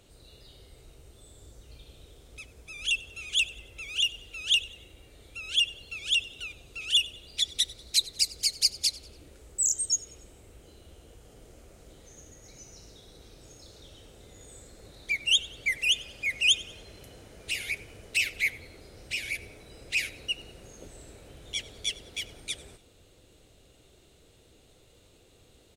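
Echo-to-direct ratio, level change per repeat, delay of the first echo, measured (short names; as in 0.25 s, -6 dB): -19.5 dB, -7.5 dB, 95 ms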